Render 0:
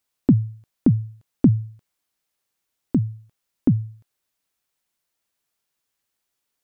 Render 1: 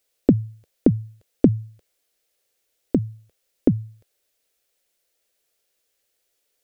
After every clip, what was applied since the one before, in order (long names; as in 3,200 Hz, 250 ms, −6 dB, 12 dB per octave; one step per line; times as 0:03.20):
octave-band graphic EQ 125/250/500/1,000 Hz −11/−6/+10/−10 dB
level +6 dB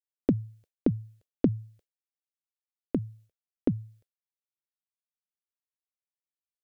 downward expander −44 dBFS
level −8.5 dB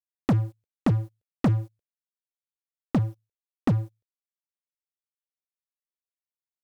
leveller curve on the samples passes 5
level −6 dB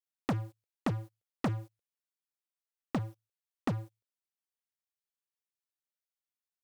low-shelf EQ 380 Hz −10 dB
level −2.5 dB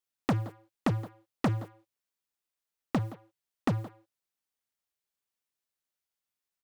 far-end echo of a speakerphone 170 ms, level −13 dB
level +4 dB